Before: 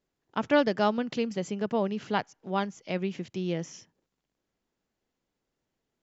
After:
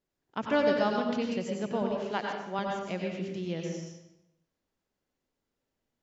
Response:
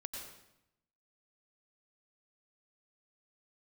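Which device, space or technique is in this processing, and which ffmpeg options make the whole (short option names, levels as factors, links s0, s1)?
bathroom: -filter_complex "[0:a]asettb=1/sr,asplit=3[s0][s1][s2];[s0]atrim=end=1.824[s3];[s1]atrim=start=1.82:end=2.59,asetpts=PTS-STARTPTS,afade=t=in:d=0.004:c=qsin,afade=t=out:st=0.766:d=0.004:c=qsin,highpass=230[s4];[s2]atrim=start=2.586[s5];[s3][s4]acrossfade=d=0.004:c1=hsin:c2=qsin[s6];[s6][s5]acrossfade=d=0.004:c1=qsin:c2=hsin[s7];[1:a]atrim=start_sample=2205[s8];[s7][s8]afir=irnorm=-1:irlink=0"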